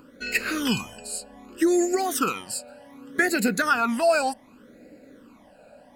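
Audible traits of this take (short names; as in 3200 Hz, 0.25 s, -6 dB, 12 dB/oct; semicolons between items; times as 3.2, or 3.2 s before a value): phasing stages 12, 0.66 Hz, lowest notch 340–1100 Hz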